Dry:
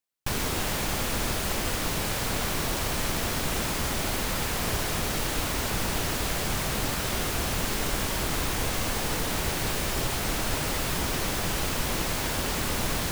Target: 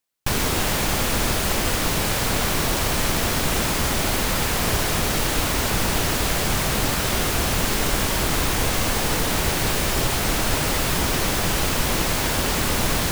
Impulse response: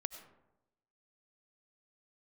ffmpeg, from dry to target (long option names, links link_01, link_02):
-af "volume=6.5dB"